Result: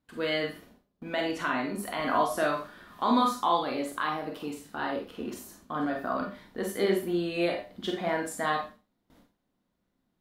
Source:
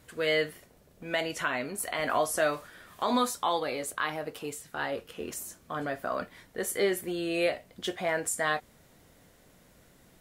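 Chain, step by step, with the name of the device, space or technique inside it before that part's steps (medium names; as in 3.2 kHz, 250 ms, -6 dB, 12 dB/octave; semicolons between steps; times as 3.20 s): behind a face mask (treble shelf 2.3 kHz -7.5 dB); gate with hold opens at -48 dBFS; graphic EQ 125/250/500/1000/2000/4000/8000 Hz -4/+8/-5/+4/-3/+5/-5 dB; Schroeder reverb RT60 0.3 s, combs from 31 ms, DRR 2 dB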